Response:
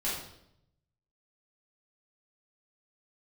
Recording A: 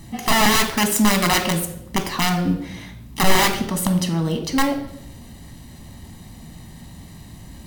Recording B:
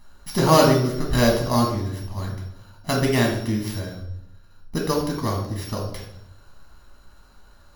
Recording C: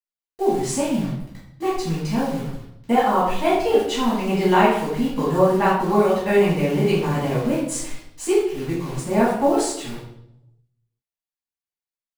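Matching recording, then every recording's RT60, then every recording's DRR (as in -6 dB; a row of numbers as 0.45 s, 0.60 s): C; 0.75 s, 0.75 s, 0.75 s; 5.5 dB, -1.0 dB, -9.0 dB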